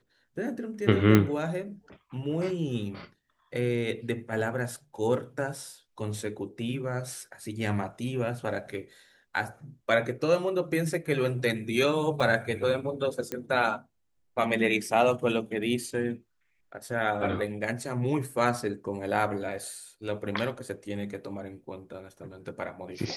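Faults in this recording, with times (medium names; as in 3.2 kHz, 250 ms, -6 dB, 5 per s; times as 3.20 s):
1.15 s: pop -7 dBFS
12.20 s: dropout 4.5 ms
13.32 s: pop -17 dBFS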